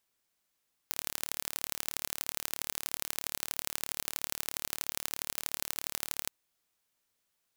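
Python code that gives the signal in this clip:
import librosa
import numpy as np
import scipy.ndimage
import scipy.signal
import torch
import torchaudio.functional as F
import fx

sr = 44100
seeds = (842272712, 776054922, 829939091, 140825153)

y = fx.impulse_train(sr, length_s=5.38, per_s=36.9, accent_every=3, level_db=-4.5)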